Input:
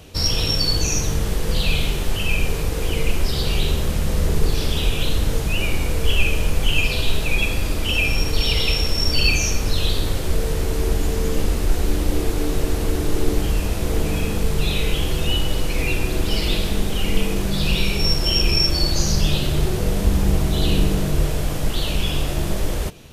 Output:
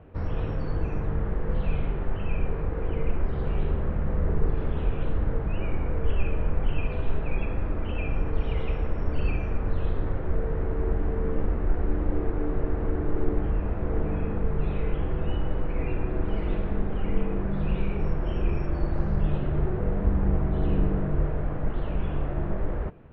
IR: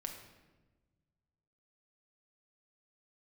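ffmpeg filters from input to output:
-af "lowpass=f=1.7k:w=0.5412,lowpass=f=1.7k:w=1.3066,volume=-5.5dB"

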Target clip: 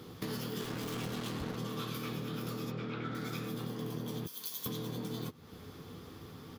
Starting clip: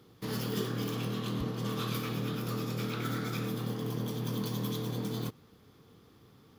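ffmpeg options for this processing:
-filter_complex "[0:a]asettb=1/sr,asplit=3[a][b][c];[a]atrim=end=2.704[d];[b]atrim=start=2.7:end=3.15,asetpts=PTS-STARTPTS,afade=t=in:d=0.004:c=qsin,afade=t=out:st=0.446:d=0.004:c=qsin,lowpass=2.9k[e];[c]atrim=start=3.146[f];[d][e]acrossfade=d=0.004:c1=hsin:c2=qsin[g];[g][f]acrossfade=d=0.004:c1=qsin:c2=hsin,asettb=1/sr,asplit=3[h][i][j];[h]atrim=end=4.264[k];[i]atrim=start=4.26:end=4.66,asetpts=PTS-STARTPTS,afade=t=in:d=0.004:c=qsin,afade=t=out:st=0.396:d=0.004:c=qsin,aderivative[l];[j]atrim=start=4.656[m];[k][l]acrossfade=d=0.004:c1=hsin:c2=qsin[n];[n][m]acrossfade=d=0.004:c1=qsin:c2=hsin,acompressor=threshold=-47dB:ratio=5,asettb=1/sr,asplit=3[o][p][q];[o]atrim=end=0.604[r];[p]atrim=start=0.6:end=1.56,asetpts=PTS-STARTPTS,afade=t=in:d=0.004:c=qsin,afade=t=out:st=0.956:d=0.004:c=qsin,acrusher=bits=7:mix=0:aa=0.5[s];[q]atrim=start=1.556[t];[r][s]acrossfade=d=0.004:c1=hsin:c2=qsin[u];[u][t]acrossfade=d=0.004:c1=qsin:c2=hsin,asplit=2[v][w];[w]adelay=12,volume=-9dB[x];[v][x]amix=inputs=2:normalize=0,volume=9.5dB"

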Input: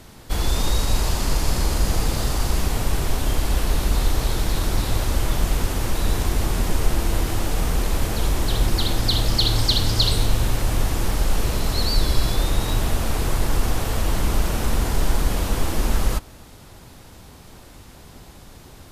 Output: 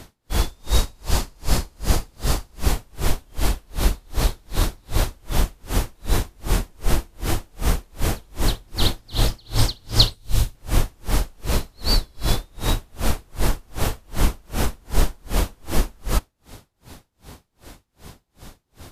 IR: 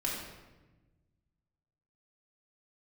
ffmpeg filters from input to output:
-filter_complex "[0:a]asettb=1/sr,asplit=3[a][b][c];[a]atrim=end=10.144[d];[b]atrim=start=10.14:end=10.55,asetpts=PTS-STARTPTS,afade=t=in:d=0.004:c=qsin,afade=t=out:st=0.406:d=0.004:c=qsin,acrossover=split=150|3000[e][f][g];[f]acompressor=threshold=-37dB:ratio=3[h];[e][h][g]amix=inputs=3:normalize=0[i];[c]atrim=start=10.546[j];[d][i]acrossfade=d=0.004:c1=hsin:c2=qsin[k];[k][j]acrossfade=d=0.004:c1=qsin:c2=hsin,aeval=exprs='val(0)*pow(10,-38*(0.5-0.5*cos(2*PI*2.6*n/s))/20)':c=same,volume=5dB"

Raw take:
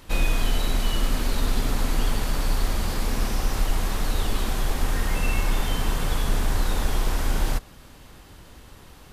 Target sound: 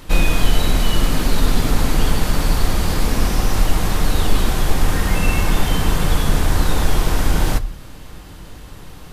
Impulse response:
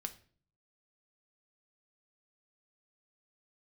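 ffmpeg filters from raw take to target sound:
-filter_complex "[0:a]asplit=2[a][b];[1:a]atrim=start_sample=2205,lowshelf=f=370:g=6[c];[b][c]afir=irnorm=-1:irlink=0,volume=1dB[d];[a][d]amix=inputs=2:normalize=0,volume=1.5dB"

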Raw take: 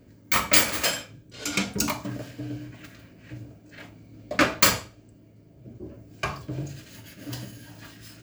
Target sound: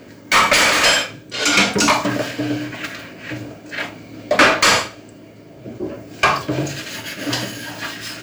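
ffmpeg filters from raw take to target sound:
-filter_complex "[0:a]asplit=2[a][b];[b]highpass=f=720:p=1,volume=28dB,asoftclip=type=tanh:threshold=-2dB[c];[a][c]amix=inputs=2:normalize=0,lowpass=f=4.3k:p=1,volume=-6dB,acrossover=split=9900[d][e];[e]acompressor=threshold=-39dB:ratio=4:attack=1:release=60[f];[d][f]amix=inputs=2:normalize=0"

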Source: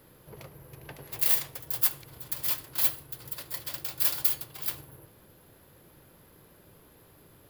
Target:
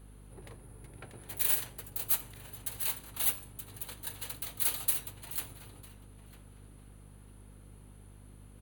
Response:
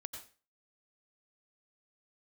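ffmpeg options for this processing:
-filter_complex "[0:a]bandreject=f=6.2k:w=5.3,asetrate=38367,aresample=44100,aeval=exprs='val(0)+0.00447*(sin(2*PI*50*n/s)+sin(2*PI*2*50*n/s)/2+sin(2*PI*3*50*n/s)/3+sin(2*PI*4*50*n/s)/4+sin(2*PI*5*50*n/s)/5)':c=same,asplit=2[a][b];[b]adelay=951,lowpass=f=2.5k:p=1,volume=-14dB,asplit=2[c][d];[d]adelay=951,lowpass=f=2.5k:p=1,volume=0.27,asplit=2[e][f];[f]adelay=951,lowpass=f=2.5k:p=1,volume=0.27[g];[c][e][g]amix=inputs=3:normalize=0[h];[a][h]amix=inputs=2:normalize=0,volume=-4.5dB"

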